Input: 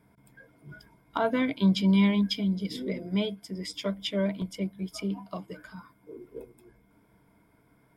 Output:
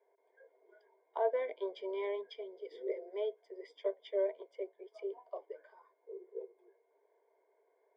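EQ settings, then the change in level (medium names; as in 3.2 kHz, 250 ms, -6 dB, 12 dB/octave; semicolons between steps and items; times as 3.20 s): boxcar filter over 33 samples; rippled Chebyshev high-pass 380 Hz, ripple 3 dB; distance through air 67 m; +2.5 dB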